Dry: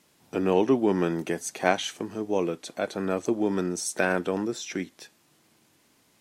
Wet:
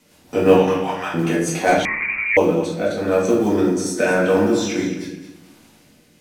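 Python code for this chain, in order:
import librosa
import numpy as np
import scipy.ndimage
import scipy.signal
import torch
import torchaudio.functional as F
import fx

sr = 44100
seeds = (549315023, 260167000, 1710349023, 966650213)

p1 = fx.steep_highpass(x, sr, hz=680.0, slope=48, at=(0.52, 1.14))
p2 = fx.rider(p1, sr, range_db=10, speed_s=2.0)
p3 = p1 + F.gain(torch.from_numpy(p2), 2.0).numpy()
p4 = fx.quant_float(p3, sr, bits=4)
p5 = fx.rotary_switch(p4, sr, hz=5.5, then_hz=0.9, switch_at_s=0.97)
p6 = p5 + fx.echo_feedback(p5, sr, ms=214, feedback_pct=28, wet_db=-11.0, dry=0)
p7 = fx.room_shoebox(p6, sr, seeds[0], volume_m3=160.0, walls='mixed', distance_m=1.9)
p8 = fx.freq_invert(p7, sr, carrier_hz=2600, at=(1.85, 2.37))
y = F.gain(torch.from_numpy(p8), -3.5).numpy()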